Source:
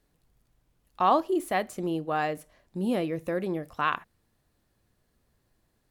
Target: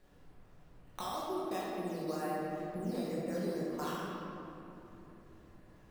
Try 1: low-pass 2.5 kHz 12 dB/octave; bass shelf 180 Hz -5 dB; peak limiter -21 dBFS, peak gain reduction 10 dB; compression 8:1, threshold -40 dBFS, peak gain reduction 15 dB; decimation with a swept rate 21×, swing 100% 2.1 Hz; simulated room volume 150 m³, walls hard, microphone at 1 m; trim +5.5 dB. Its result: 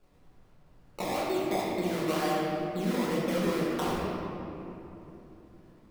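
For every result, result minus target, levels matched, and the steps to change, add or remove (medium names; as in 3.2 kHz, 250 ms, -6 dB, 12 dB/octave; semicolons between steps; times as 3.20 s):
compression: peak gain reduction -8 dB; decimation with a swept rate: distortion +10 dB
change: compression 8:1, threshold -49 dBFS, peak gain reduction 23 dB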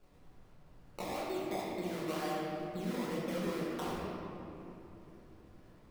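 decimation with a swept rate: distortion +10 dB
change: decimation with a swept rate 7×, swing 100% 2.1 Hz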